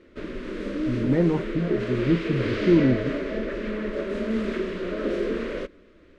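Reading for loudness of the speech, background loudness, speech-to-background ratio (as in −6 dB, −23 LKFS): −24.0 LKFS, −29.5 LKFS, 5.5 dB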